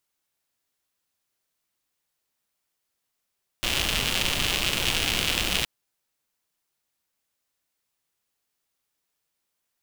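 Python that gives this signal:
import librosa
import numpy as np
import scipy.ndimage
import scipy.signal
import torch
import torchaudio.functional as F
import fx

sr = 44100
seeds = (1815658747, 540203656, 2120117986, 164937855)

y = fx.rain(sr, seeds[0], length_s=2.02, drops_per_s=170.0, hz=2900.0, bed_db=-2.5)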